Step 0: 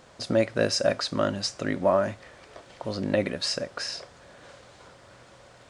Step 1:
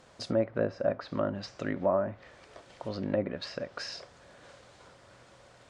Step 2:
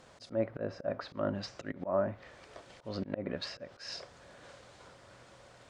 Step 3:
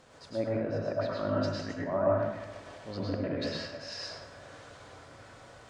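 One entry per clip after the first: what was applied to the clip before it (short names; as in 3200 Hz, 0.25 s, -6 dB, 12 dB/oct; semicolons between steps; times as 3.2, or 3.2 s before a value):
treble ducked by the level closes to 1200 Hz, closed at -21.5 dBFS; gain -4.5 dB
auto swell 0.152 s
reverb RT60 1.1 s, pre-delay 99 ms, DRR -4.5 dB; gain -1 dB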